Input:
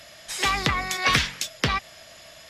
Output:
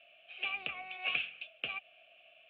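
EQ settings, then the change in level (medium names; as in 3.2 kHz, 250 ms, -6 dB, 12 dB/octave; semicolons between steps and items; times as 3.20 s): vowel filter a; four-pole ladder low-pass 3.2 kHz, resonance 65%; static phaser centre 2.4 kHz, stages 4; +7.5 dB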